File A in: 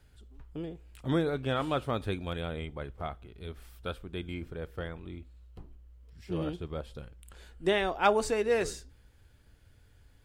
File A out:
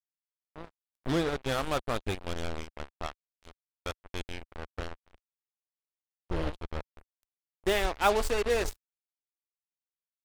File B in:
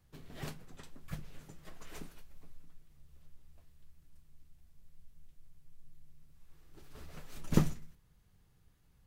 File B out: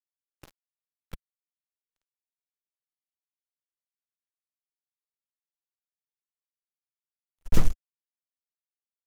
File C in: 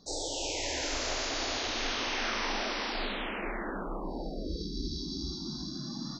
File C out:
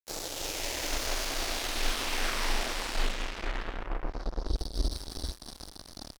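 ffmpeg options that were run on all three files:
-af "acrusher=bits=4:mix=0:aa=0.5,asubboost=boost=7.5:cutoff=57"

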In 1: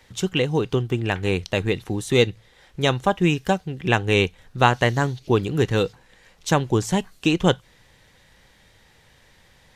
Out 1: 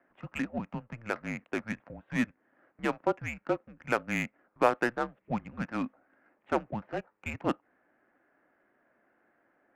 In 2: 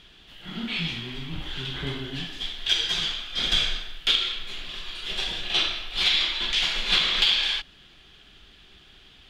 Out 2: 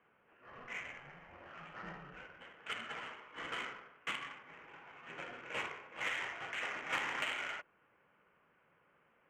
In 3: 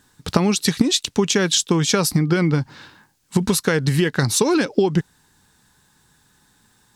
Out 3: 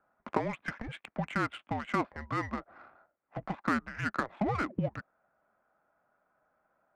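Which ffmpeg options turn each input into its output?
-af "highpass=f=500:t=q:w=0.5412,highpass=f=500:t=q:w=1.307,lowpass=f=2500:t=q:w=0.5176,lowpass=f=2500:t=q:w=0.7071,lowpass=f=2500:t=q:w=1.932,afreqshift=-230,adynamicsmooth=sensitivity=3:basefreq=1500,volume=0.501"

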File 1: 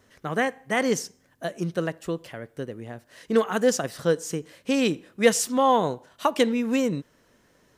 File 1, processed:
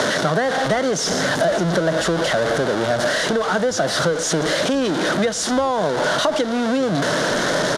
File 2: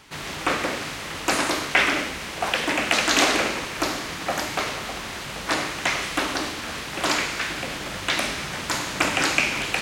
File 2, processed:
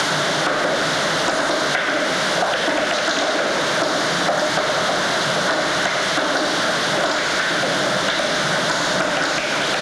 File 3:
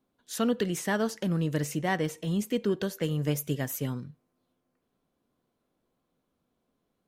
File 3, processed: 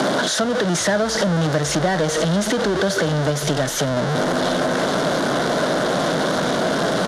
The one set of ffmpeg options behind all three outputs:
-filter_complex "[0:a]aeval=exprs='val(0)+0.5*0.126*sgn(val(0))':c=same,acompressor=threshold=0.0794:ratio=6,highpass=f=160:w=0.5412,highpass=f=160:w=1.3066,equalizer=f=230:t=q:w=4:g=-5,equalizer=f=620:t=q:w=4:g=10,equalizer=f=1500:t=q:w=4:g=7,equalizer=f=2500:t=q:w=4:g=-9,equalizer=f=3600:t=q:w=4:g=4,equalizer=f=7900:t=q:w=4:g=-7,lowpass=f=8600:w=0.5412,lowpass=f=8600:w=1.3066,asplit=2[s0][s1];[s1]asplit=3[s2][s3][s4];[s2]adelay=405,afreqshift=-120,volume=0.0794[s5];[s3]adelay=810,afreqshift=-240,volume=0.0285[s6];[s4]adelay=1215,afreqshift=-360,volume=0.0104[s7];[s5][s6][s7]amix=inputs=3:normalize=0[s8];[s0][s8]amix=inputs=2:normalize=0,acrossover=split=210[s9][s10];[s10]acompressor=threshold=0.0355:ratio=2[s11];[s9][s11]amix=inputs=2:normalize=0,volume=2.51"

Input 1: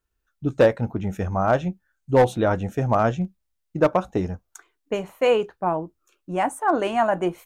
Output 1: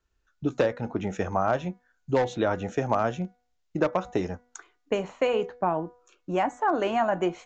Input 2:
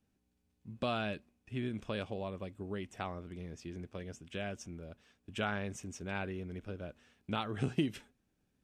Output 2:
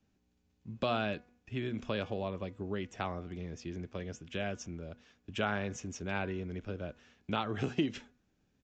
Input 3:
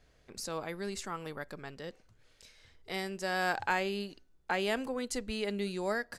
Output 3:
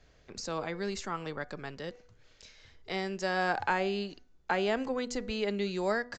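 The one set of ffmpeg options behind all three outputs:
-filter_complex "[0:a]acrossover=split=250|1500[s0][s1][s2];[s0]acompressor=threshold=0.00891:ratio=4[s3];[s1]acompressor=threshold=0.0447:ratio=4[s4];[s2]acompressor=threshold=0.01:ratio=4[s5];[s3][s4][s5]amix=inputs=3:normalize=0,bandreject=f=244.3:t=h:w=4,bandreject=f=488.6:t=h:w=4,bandreject=f=732.9:t=h:w=4,bandreject=f=977.2:t=h:w=4,bandreject=f=1221.5:t=h:w=4,bandreject=f=1465.8:t=h:w=4,bandreject=f=1710.1:t=h:w=4,bandreject=f=1954.4:t=h:w=4,bandreject=f=2198.7:t=h:w=4,aresample=16000,aresample=44100,volume=1.5"

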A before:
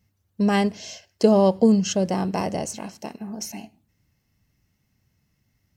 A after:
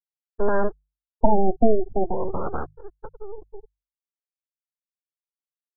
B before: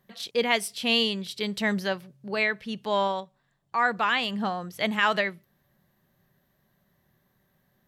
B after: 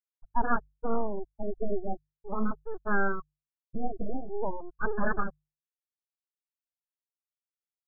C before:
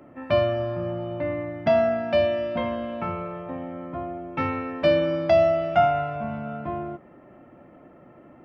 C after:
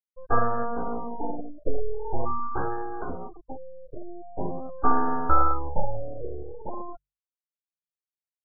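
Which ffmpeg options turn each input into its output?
-af "asuperstop=centerf=1300:order=12:qfactor=4.3,afftfilt=real='re*gte(hypot(re,im),0.126)':imag='im*gte(hypot(re,im),0.126)':win_size=1024:overlap=0.75,lowshelf=f=70:g=7.5,aresample=11025,aeval=exprs='abs(val(0))':c=same,aresample=44100,bandreject=f=50:t=h:w=6,bandreject=f=100:t=h:w=6,bandreject=f=150:t=h:w=6,afftfilt=real='re*lt(b*sr/1024,730*pow(1800/730,0.5+0.5*sin(2*PI*0.44*pts/sr)))':imag='im*lt(b*sr/1024,730*pow(1800/730,0.5+0.5*sin(2*PI*0.44*pts/sr)))':win_size=1024:overlap=0.75,volume=1.33"

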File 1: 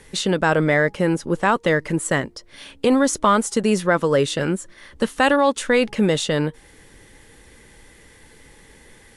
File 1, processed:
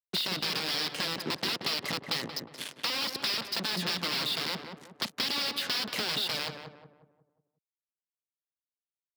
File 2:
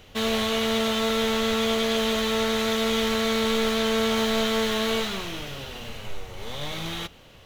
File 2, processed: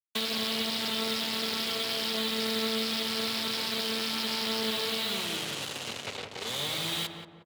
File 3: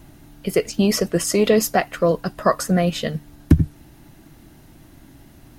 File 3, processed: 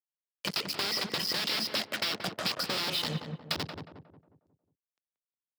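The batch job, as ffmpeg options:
-filter_complex "[0:a]aresample=11025,aeval=exprs='(mod(6.68*val(0)+1,2)-1)/6.68':c=same,aresample=44100,highshelf=f=3400:g=10.5,alimiter=limit=0.168:level=0:latency=1:release=19,acrusher=bits=4:mix=0:aa=0.5,acrossover=split=320|3000[s0][s1][s2];[s1]acompressor=threshold=0.01:ratio=1.5[s3];[s0][s3][s2]amix=inputs=3:normalize=0,lowshelf=f=170:g=-9,acompressor=threshold=0.0398:ratio=4,highpass=f=93:w=0.5412,highpass=f=93:w=1.3066,asplit=2[s4][s5];[s5]adelay=180,lowpass=f=1200:p=1,volume=0.596,asplit=2[s6][s7];[s7]adelay=180,lowpass=f=1200:p=1,volume=0.46,asplit=2[s8][s9];[s9]adelay=180,lowpass=f=1200:p=1,volume=0.46,asplit=2[s10][s11];[s11]adelay=180,lowpass=f=1200:p=1,volume=0.46,asplit=2[s12][s13];[s13]adelay=180,lowpass=f=1200:p=1,volume=0.46,asplit=2[s14][s15];[s15]adelay=180,lowpass=f=1200:p=1,volume=0.46[s16];[s4][s6][s8][s10][s12][s14][s16]amix=inputs=7:normalize=0"

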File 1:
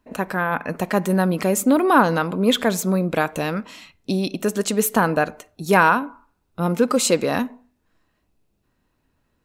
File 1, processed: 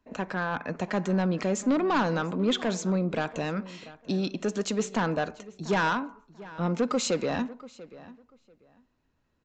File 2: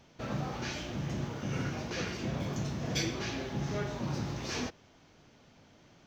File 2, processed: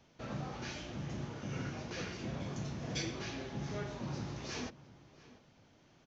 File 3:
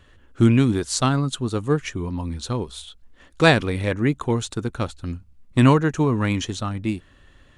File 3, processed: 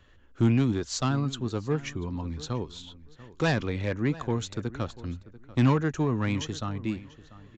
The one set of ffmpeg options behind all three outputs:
-filter_complex "[0:a]acrossover=split=200[s0][s1];[s1]asoftclip=type=tanh:threshold=0.178[s2];[s0][s2]amix=inputs=2:normalize=0,asplit=2[s3][s4];[s4]adelay=690,lowpass=f=3100:p=1,volume=0.126,asplit=2[s5][s6];[s6]adelay=690,lowpass=f=3100:p=1,volume=0.2[s7];[s3][s5][s7]amix=inputs=3:normalize=0,aresample=16000,aresample=44100,volume=0.531"

